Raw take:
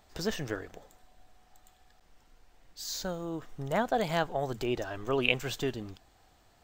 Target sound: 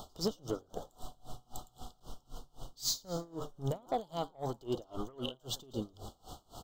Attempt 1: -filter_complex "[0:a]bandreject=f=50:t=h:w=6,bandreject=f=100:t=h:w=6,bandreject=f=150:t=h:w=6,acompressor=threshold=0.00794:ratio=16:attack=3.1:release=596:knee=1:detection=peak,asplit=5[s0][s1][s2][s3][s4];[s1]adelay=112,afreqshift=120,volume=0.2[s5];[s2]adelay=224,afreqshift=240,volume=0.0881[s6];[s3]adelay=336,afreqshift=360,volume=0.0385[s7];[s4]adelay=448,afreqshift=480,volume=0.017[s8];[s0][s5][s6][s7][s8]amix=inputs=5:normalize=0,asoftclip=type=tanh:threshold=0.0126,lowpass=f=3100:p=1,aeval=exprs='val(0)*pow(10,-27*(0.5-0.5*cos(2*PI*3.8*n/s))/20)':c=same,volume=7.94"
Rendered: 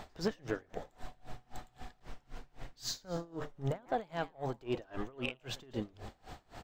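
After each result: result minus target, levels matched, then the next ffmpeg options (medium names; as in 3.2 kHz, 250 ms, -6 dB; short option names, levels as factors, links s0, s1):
2 kHz band +15.5 dB; 4 kHz band -3.5 dB
-filter_complex "[0:a]bandreject=f=50:t=h:w=6,bandreject=f=100:t=h:w=6,bandreject=f=150:t=h:w=6,acompressor=threshold=0.00794:ratio=16:attack=3.1:release=596:knee=1:detection=peak,asuperstop=centerf=2000:order=20:qfactor=1.3,asplit=5[s0][s1][s2][s3][s4];[s1]adelay=112,afreqshift=120,volume=0.2[s5];[s2]adelay=224,afreqshift=240,volume=0.0881[s6];[s3]adelay=336,afreqshift=360,volume=0.0385[s7];[s4]adelay=448,afreqshift=480,volume=0.017[s8];[s0][s5][s6][s7][s8]amix=inputs=5:normalize=0,asoftclip=type=tanh:threshold=0.0126,lowpass=f=3100:p=1,aeval=exprs='val(0)*pow(10,-27*(0.5-0.5*cos(2*PI*3.8*n/s))/20)':c=same,volume=7.94"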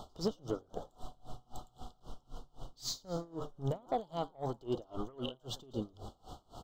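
4 kHz band -3.0 dB
-filter_complex "[0:a]bandreject=f=50:t=h:w=6,bandreject=f=100:t=h:w=6,bandreject=f=150:t=h:w=6,acompressor=threshold=0.00794:ratio=16:attack=3.1:release=596:knee=1:detection=peak,asuperstop=centerf=2000:order=20:qfactor=1.3,asplit=5[s0][s1][s2][s3][s4];[s1]adelay=112,afreqshift=120,volume=0.2[s5];[s2]adelay=224,afreqshift=240,volume=0.0881[s6];[s3]adelay=336,afreqshift=360,volume=0.0385[s7];[s4]adelay=448,afreqshift=480,volume=0.017[s8];[s0][s5][s6][s7][s8]amix=inputs=5:normalize=0,asoftclip=type=tanh:threshold=0.0126,aeval=exprs='val(0)*pow(10,-27*(0.5-0.5*cos(2*PI*3.8*n/s))/20)':c=same,volume=7.94"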